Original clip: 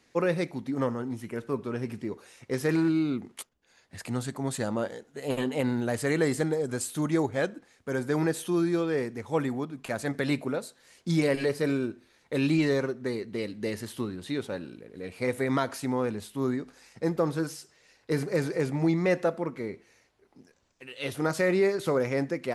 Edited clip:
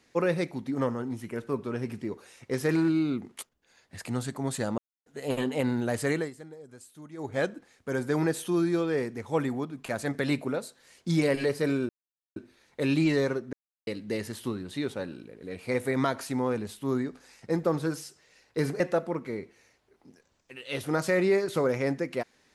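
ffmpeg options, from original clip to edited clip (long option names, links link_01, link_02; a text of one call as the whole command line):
ffmpeg -i in.wav -filter_complex "[0:a]asplit=9[link_01][link_02][link_03][link_04][link_05][link_06][link_07][link_08][link_09];[link_01]atrim=end=4.78,asetpts=PTS-STARTPTS,afade=type=out:start_time=4.776:duration=0.004:curve=hsin[link_10];[link_02]atrim=start=4.78:end=5.06,asetpts=PTS-STARTPTS,volume=0[link_11];[link_03]atrim=start=5.06:end=6.31,asetpts=PTS-STARTPTS,afade=type=in:duration=0.004:curve=hsin,afade=type=out:start_time=1.04:duration=0.21:silence=0.125893[link_12];[link_04]atrim=start=6.31:end=7.17,asetpts=PTS-STARTPTS,volume=-18dB[link_13];[link_05]atrim=start=7.17:end=11.89,asetpts=PTS-STARTPTS,afade=type=in:duration=0.21:silence=0.125893,afade=type=out:start_time=4.716:duration=0.004:curve=hsin,apad=pad_dur=0.47[link_14];[link_06]atrim=start=11.89:end=13.06,asetpts=PTS-STARTPTS,afade=type=in:duration=0.004:curve=hsin,afade=type=out:start_time=1.166:duration=0.004:curve=hsin[link_15];[link_07]atrim=start=13.06:end=13.4,asetpts=PTS-STARTPTS,volume=0[link_16];[link_08]atrim=start=13.4:end=18.332,asetpts=PTS-STARTPTS,afade=type=in:duration=0.004:curve=hsin[link_17];[link_09]atrim=start=19.108[link_18];[link_10][link_11][link_12][link_13][link_14][link_15][link_16][link_17]concat=n=8:v=0:a=1[link_19];[link_19][link_18]acrossfade=duration=0.004:curve1=hsin:curve2=hsin" out.wav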